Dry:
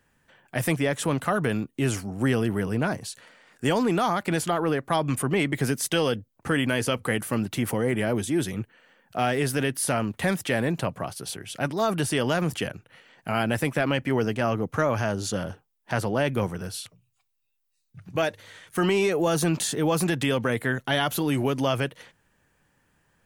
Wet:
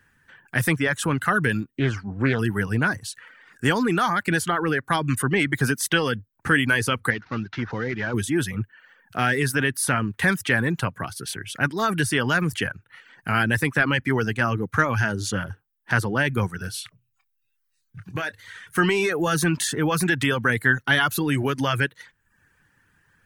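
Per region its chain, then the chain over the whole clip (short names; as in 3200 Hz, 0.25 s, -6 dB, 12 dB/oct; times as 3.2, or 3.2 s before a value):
1.78–2.39 air absorption 180 m + Doppler distortion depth 0.3 ms
7.1–8.14 CVSD 32 kbps + LPF 2200 Hz 6 dB/oct + low shelf 500 Hz -5.5 dB
16.65–18.78 compressor 3:1, threshold -27 dBFS + doubler 26 ms -11 dB
whole clip: notch 7300 Hz, Q 26; reverb removal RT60 0.6 s; fifteen-band EQ 100 Hz +5 dB, 630 Hz -8 dB, 1600 Hz +9 dB; gain +2.5 dB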